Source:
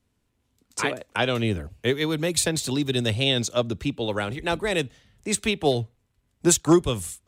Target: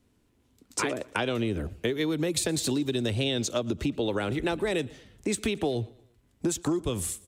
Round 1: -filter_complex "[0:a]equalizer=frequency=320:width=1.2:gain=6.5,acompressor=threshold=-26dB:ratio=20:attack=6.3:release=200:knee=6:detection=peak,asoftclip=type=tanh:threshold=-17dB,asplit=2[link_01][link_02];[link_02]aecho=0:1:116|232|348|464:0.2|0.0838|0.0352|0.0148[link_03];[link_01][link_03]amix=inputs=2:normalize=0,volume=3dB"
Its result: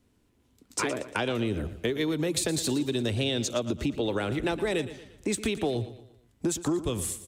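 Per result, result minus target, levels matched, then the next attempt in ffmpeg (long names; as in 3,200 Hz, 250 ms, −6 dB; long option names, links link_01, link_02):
soft clipping: distortion +12 dB; echo-to-direct +9 dB
-filter_complex "[0:a]equalizer=frequency=320:width=1.2:gain=6.5,acompressor=threshold=-26dB:ratio=20:attack=6.3:release=200:knee=6:detection=peak,asoftclip=type=tanh:threshold=-10.5dB,asplit=2[link_01][link_02];[link_02]aecho=0:1:116|232|348|464:0.2|0.0838|0.0352|0.0148[link_03];[link_01][link_03]amix=inputs=2:normalize=0,volume=3dB"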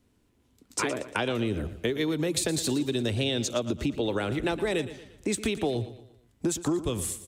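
echo-to-direct +9 dB
-filter_complex "[0:a]equalizer=frequency=320:width=1.2:gain=6.5,acompressor=threshold=-26dB:ratio=20:attack=6.3:release=200:knee=6:detection=peak,asoftclip=type=tanh:threshold=-10.5dB,asplit=2[link_01][link_02];[link_02]aecho=0:1:116|232|348:0.0708|0.0297|0.0125[link_03];[link_01][link_03]amix=inputs=2:normalize=0,volume=3dB"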